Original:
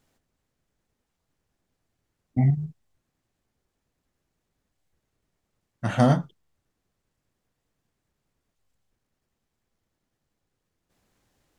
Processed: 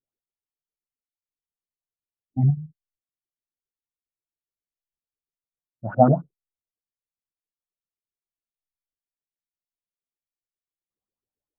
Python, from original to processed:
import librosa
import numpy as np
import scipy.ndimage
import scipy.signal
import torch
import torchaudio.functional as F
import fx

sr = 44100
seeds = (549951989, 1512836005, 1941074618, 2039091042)

y = fx.vibrato(x, sr, rate_hz=8.5, depth_cents=30.0)
y = fx.filter_lfo_lowpass(y, sr, shape='saw_up', hz=7.4, low_hz=320.0, high_hz=1600.0, q=4.3)
y = fx.spectral_expand(y, sr, expansion=1.5)